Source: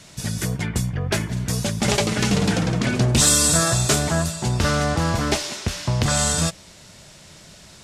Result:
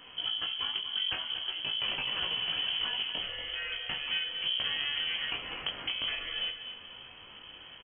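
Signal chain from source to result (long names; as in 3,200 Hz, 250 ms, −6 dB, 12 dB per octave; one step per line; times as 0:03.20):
downward compressor 5 to 1, threshold −29 dBFS, peak gain reduction 14.5 dB
chorus effect 0.43 Hz, delay 16.5 ms, depth 4.7 ms
repeating echo 236 ms, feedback 38%, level −10.5 dB
on a send at −12 dB: convolution reverb RT60 0.60 s, pre-delay 3 ms
on the sum: voice inversion scrambler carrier 3,200 Hz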